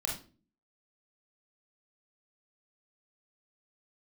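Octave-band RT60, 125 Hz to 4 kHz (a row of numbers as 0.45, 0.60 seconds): 0.60, 0.65, 0.45, 0.35, 0.30, 0.30 seconds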